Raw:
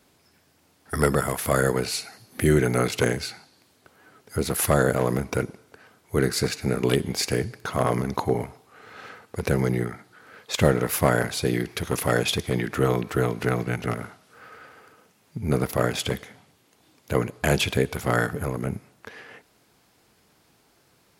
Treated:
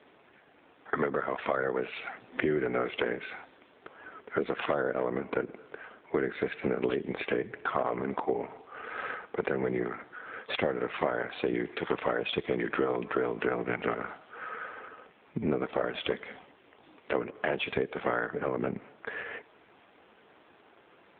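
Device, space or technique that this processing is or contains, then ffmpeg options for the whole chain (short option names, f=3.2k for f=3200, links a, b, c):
voicemail: -af "highpass=300,lowpass=3.1k,acompressor=threshold=-34dB:ratio=8,volume=9dB" -ar 8000 -c:a libopencore_amrnb -b:a 7400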